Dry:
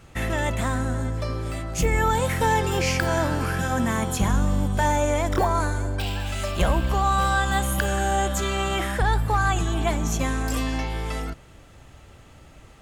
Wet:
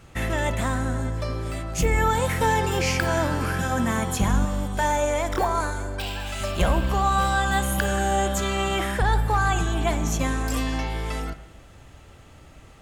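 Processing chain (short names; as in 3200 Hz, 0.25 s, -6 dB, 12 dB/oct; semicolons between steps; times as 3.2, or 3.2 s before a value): 4.45–6.41 bell 140 Hz -8 dB 2 oct; spring tank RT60 1.1 s, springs 49/56 ms, chirp 50 ms, DRR 12.5 dB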